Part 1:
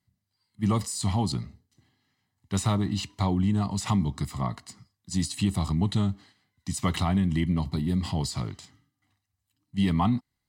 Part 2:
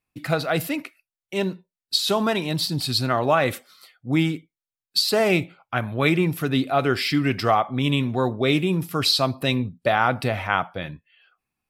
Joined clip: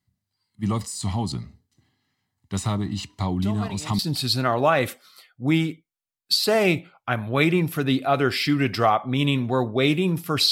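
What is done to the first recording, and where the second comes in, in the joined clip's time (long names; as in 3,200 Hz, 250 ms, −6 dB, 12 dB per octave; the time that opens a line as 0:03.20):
part 1
0:03.42: mix in part 2 from 0:02.07 0.57 s −13.5 dB
0:03.99: continue with part 2 from 0:02.64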